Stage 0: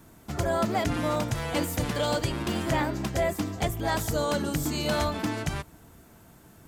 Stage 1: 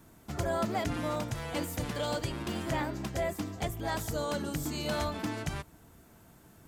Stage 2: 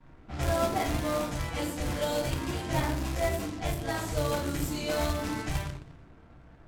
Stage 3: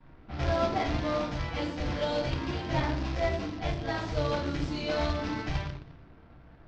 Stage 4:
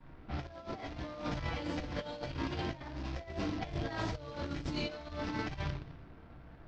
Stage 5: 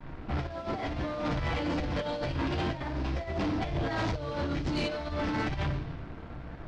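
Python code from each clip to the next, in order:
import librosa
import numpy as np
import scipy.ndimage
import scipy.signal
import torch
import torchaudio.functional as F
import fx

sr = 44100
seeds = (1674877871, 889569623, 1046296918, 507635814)

y1 = fx.rider(x, sr, range_db=4, speed_s=2.0)
y1 = y1 * librosa.db_to_amplitude(-6.0)
y2 = fx.room_shoebox(y1, sr, seeds[0], volume_m3=65.0, walls='mixed', distance_m=1.9)
y2 = fx.quant_companded(y2, sr, bits=4)
y2 = fx.env_lowpass(y2, sr, base_hz=1900.0, full_db=-19.0)
y2 = y2 * librosa.db_to_amplitude(-7.5)
y3 = scipy.signal.sosfilt(scipy.signal.butter(6, 5400.0, 'lowpass', fs=sr, output='sos'), y2)
y4 = fx.over_compress(y3, sr, threshold_db=-34.0, ratio=-0.5)
y4 = y4 * librosa.db_to_amplitude(-4.0)
y5 = fx.leveller(y4, sr, passes=3)
y5 = fx.air_absorb(y5, sr, metres=75.0)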